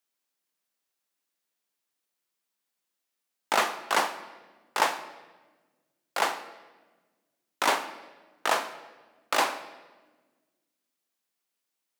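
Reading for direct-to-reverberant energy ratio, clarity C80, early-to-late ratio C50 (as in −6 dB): 10.5 dB, 14.5 dB, 13.0 dB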